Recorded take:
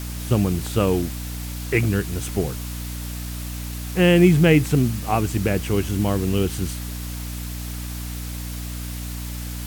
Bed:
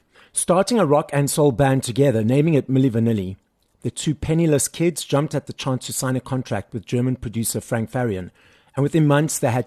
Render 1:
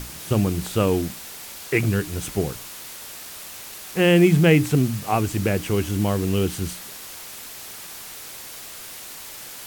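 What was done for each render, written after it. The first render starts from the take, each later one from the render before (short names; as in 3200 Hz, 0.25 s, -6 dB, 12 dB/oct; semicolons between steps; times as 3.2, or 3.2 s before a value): notches 60/120/180/240/300 Hz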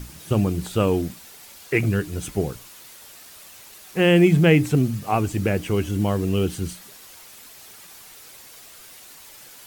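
denoiser 8 dB, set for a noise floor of -38 dBFS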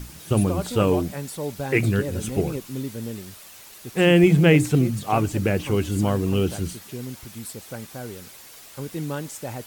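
add bed -13.5 dB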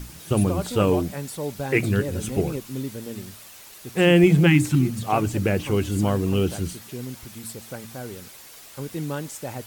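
4.49–4.87 spectral repair 380–780 Hz after; de-hum 113.6 Hz, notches 2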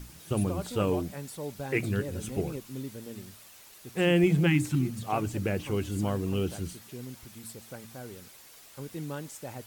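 gain -7.5 dB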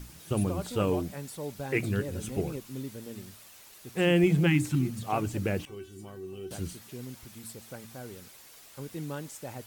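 5.65–6.51 resonator 380 Hz, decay 0.23 s, mix 90%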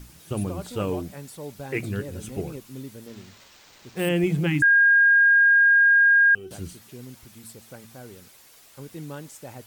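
0.63–2.5 block floating point 7-bit; 3.07–4.09 careless resampling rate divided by 4×, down none, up hold; 4.62–6.35 bleep 1620 Hz -13 dBFS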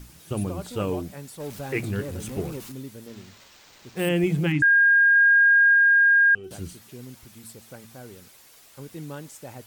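1.4–2.72 zero-crossing step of -38.5 dBFS; 4.52–5.16 air absorption 72 m; 5.74–6.44 air absorption 75 m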